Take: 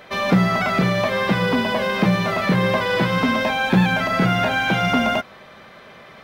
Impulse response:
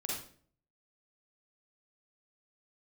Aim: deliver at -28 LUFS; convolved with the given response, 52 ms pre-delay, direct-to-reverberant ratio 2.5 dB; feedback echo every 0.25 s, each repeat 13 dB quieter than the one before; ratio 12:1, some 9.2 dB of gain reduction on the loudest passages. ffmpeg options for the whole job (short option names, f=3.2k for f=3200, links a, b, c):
-filter_complex "[0:a]acompressor=threshold=-21dB:ratio=12,aecho=1:1:250|500|750:0.224|0.0493|0.0108,asplit=2[a][b];[1:a]atrim=start_sample=2205,adelay=52[c];[b][c]afir=irnorm=-1:irlink=0,volume=-4.5dB[d];[a][d]amix=inputs=2:normalize=0,volume=-5.5dB"